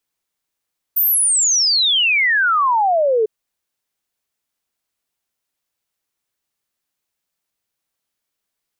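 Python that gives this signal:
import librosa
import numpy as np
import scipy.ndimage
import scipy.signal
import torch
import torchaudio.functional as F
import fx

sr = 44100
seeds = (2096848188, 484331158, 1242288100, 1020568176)

y = fx.ess(sr, length_s=2.3, from_hz=15000.0, to_hz=420.0, level_db=-12.5)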